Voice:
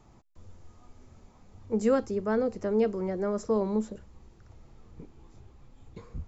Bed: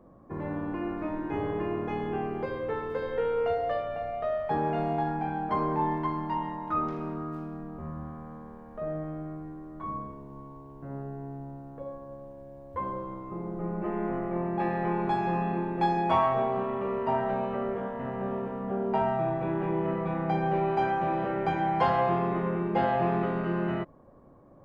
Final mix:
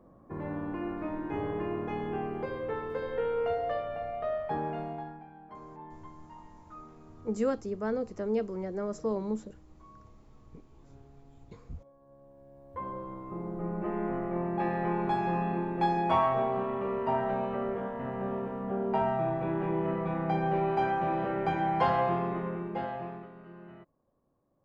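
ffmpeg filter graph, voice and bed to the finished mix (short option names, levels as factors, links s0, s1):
-filter_complex "[0:a]adelay=5550,volume=0.596[s0];[1:a]volume=5.96,afade=t=out:st=4.34:d=0.92:silence=0.141254,afade=t=in:st=11.94:d=1.41:silence=0.125893,afade=t=out:st=21.93:d=1.36:silence=0.11885[s1];[s0][s1]amix=inputs=2:normalize=0"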